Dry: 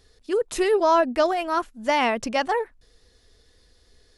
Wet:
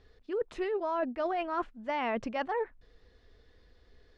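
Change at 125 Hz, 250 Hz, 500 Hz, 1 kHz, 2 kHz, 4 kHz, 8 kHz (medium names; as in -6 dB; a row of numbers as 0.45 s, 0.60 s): no reading, -9.0 dB, -10.5 dB, -10.5 dB, -11.0 dB, -15.5 dB, under -25 dB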